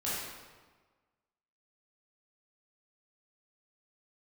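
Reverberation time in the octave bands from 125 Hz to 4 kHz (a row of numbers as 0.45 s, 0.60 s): 1.4 s, 1.4 s, 1.4 s, 1.4 s, 1.2 s, 1.0 s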